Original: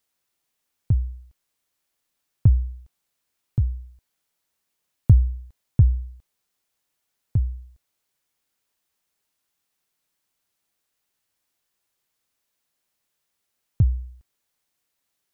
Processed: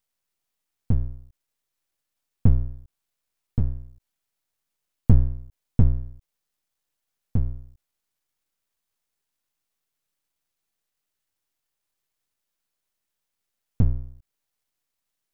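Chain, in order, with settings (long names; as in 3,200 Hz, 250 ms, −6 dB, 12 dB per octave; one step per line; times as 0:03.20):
low-shelf EQ 75 Hz +7.5 dB
half-wave rectification
level −1 dB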